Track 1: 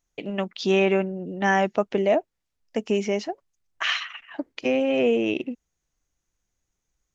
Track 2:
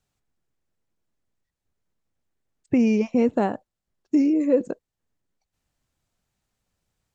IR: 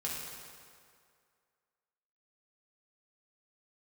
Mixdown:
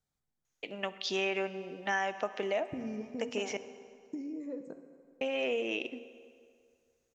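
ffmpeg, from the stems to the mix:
-filter_complex "[0:a]highpass=f=980:p=1,adelay=450,volume=-2.5dB,asplit=3[a][b][c];[a]atrim=end=3.57,asetpts=PTS-STARTPTS,afade=t=out:st=3.566:d=0.004:c=hsin[d];[b]atrim=start=3.57:end=5.21,asetpts=PTS-STARTPTS,volume=0[e];[c]atrim=start=5.21,asetpts=PTS-STARTPTS,afade=t=in:d=0.004:c=hsin[f];[d][e][f]concat=n=3:v=0:a=1,asplit=2[g][h];[h]volume=-14.5dB[i];[1:a]bandreject=f=2.7k:w=5.7,acompressor=threshold=-29dB:ratio=6,volume=-12dB,asplit=2[j][k];[k]volume=-5.5dB[l];[2:a]atrim=start_sample=2205[m];[i][l]amix=inputs=2:normalize=0[n];[n][m]afir=irnorm=-1:irlink=0[o];[g][j][o]amix=inputs=3:normalize=0,acompressor=threshold=-30dB:ratio=2.5"

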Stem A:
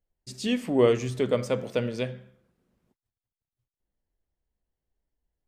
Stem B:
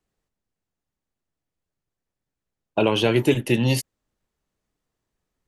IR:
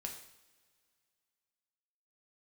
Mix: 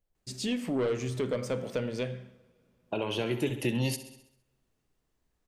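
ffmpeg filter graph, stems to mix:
-filter_complex "[0:a]asoftclip=type=tanh:threshold=-18.5dB,volume=-1.5dB,asplit=3[a][b][c];[b]volume=-5.5dB[d];[1:a]adelay=150,volume=-1dB,asplit=3[e][f][g];[f]volume=-23.5dB[h];[g]volume=-16dB[i];[c]apad=whole_len=248235[j];[e][j]sidechaincompress=threshold=-52dB:ratio=3:attack=16:release=1120[k];[2:a]atrim=start_sample=2205[l];[d][h]amix=inputs=2:normalize=0[m];[m][l]afir=irnorm=-1:irlink=0[n];[i]aecho=0:1:66|132|198|264|330|396|462:1|0.51|0.26|0.133|0.0677|0.0345|0.0176[o];[a][k][n][o]amix=inputs=4:normalize=0,acompressor=threshold=-31dB:ratio=2"

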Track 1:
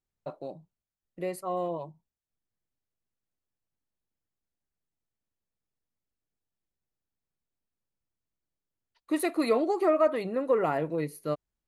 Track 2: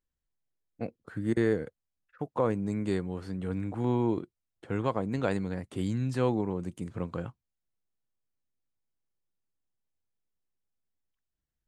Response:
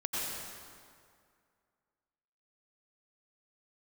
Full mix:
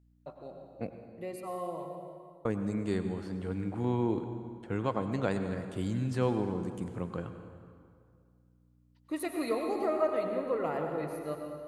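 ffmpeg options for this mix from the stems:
-filter_complex "[0:a]volume=-11dB,asplit=2[a][b];[b]volume=-3.5dB[c];[1:a]aeval=exprs='val(0)+0.000891*(sin(2*PI*60*n/s)+sin(2*PI*2*60*n/s)/2+sin(2*PI*3*60*n/s)/3+sin(2*PI*4*60*n/s)/4+sin(2*PI*5*60*n/s)/5)':c=same,volume=-4dB,asplit=3[d][e][f];[d]atrim=end=1.05,asetpts=PTS-STARTPTS,afade=t=out:st=1.046:d=0.004:c=hsin[g];[e]atrim=start=1.05:end=2.45,asetpts=PTS-STARTPTS,volume=0[h];[f]atrim=start=2.45,asetpts=PTS-STARTPTS,afade=t=in:d=0.004:c=hsin[i];[g][h][i]concat=n=3:v=0:a=1,asplit=2[j][k];[k]volume=-11dB[l];[2:a]atrim=start_sample=2205[m];[c][l]amix=inputs=2:normalize=0[n];[n][m]afir=irnorm=-1:irlink=0[o];[a][j][o]amix=inputs=3:normalize=0"

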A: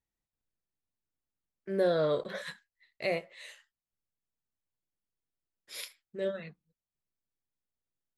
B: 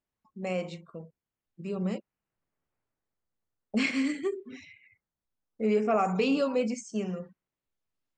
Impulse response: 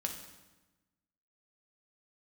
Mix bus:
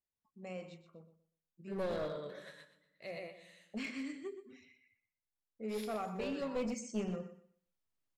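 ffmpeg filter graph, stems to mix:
-filter_complex "[0:a]volume=-13.5dB,asplit=3[a][b][c];[b]volume=-3.5dB[d];[c]volume=-3.5dB[e];[1:a]volume=-4.5dB,afade=t=in:st=6.37:d=0.39:silence=0.354813,asplit=3[f][g][h];[g]volume=-12.5dB[i];[h]apad=whole_len=360730[j];[a][j]sidechaingate=range=-15dB:threshold=-59dB:ratio=16:detection=peak[k];[2:a]atrim=start_sample=2205[l];[d][l]afir=irnorm=-1:irlink=0[m];[e][i]amix=inputs=2:normalize=0,aecho=0:1:123|246|369|492:1|0.23|0.0529|0.0122[n];[k][f][m][n]amix=inputs=4:normalize=0,aeval=exprs='clip(val(0),-1,0.0158)':c=same"

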